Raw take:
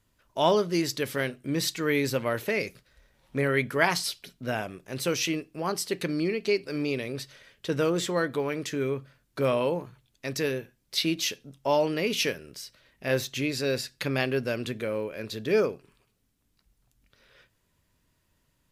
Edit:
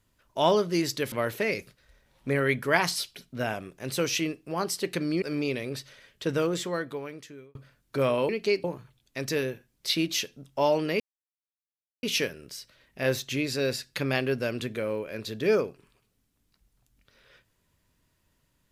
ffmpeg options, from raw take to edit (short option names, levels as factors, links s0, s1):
-filter_complex "[0:a]asplit=7[s0][s1][s2][s3][s4][s5][s6];[s0]atrim=end=1.122[s7];[s1]atrim=start=2.198:end=6.302[s8];[s2]atrim=start=6.648:end=8.98,asetpts=PTS-STARTPTS,afade=t=out:st=1.062:d=1.27[s9];[s3]atrim=start=8.98:end=9.722,asetpts=PTS-STARTPTS,afade=t=in:d=0.004:c=hsin[s10];[s4]atrim=start=6.298:end=6.652[s11];[s5]atrim=start=9.718:end=12.08,asetpts=PTS-STARTPTS,afade=t=out:st=2.358:d=0.004:c=hsin,apad=pad_dur=1.03[s12];[s6]atrim=start=12.08,asetpts=PTS-STARTPTS,afade=t=in:d=0.004:c=hsin[s13];[s7][s8]acrossfade=d=0.004:c1=hsin:c2=hsin[s14];[s9][s10]concat=n=2:v=0:a=1[s15];[s14][s15]acrossfade=d=0.004:c1=hsin:c2=hsin[s16];[s16][s11]acrossfade=d=0.004:c1=hsin:c2=hsin[s17];[s12][s13]concat=n=2:v=0:a=1[s18];[s17][s18]acrossfade=d=0.004:c1=hsin:c2=hsin"